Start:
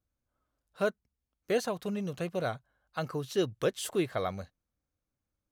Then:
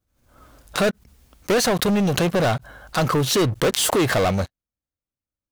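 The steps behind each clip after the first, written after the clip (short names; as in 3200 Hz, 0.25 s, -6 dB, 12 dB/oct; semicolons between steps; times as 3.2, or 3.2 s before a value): sample leveller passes 5; backwards sustainer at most 75 dB/s; gain +2 dB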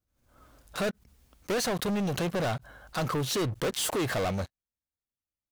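soft clip -16.5 dBFS, distortion -20 dB; gain -7.5 dB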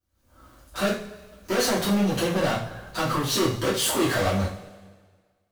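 two-slope reverb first 0.37 s, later 1.6 s, from -18 dB, DRR -9 dB; gain -3.5 dB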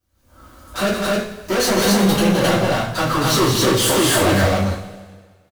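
soft clip -18.5 dBFS, distortion -16 dB; loudspeakers at several distances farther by 58 m -7 dB, 91 m -1 dB; gain +7 dB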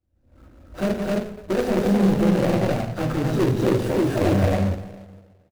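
median filter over 41 samples; gain -1.5 dB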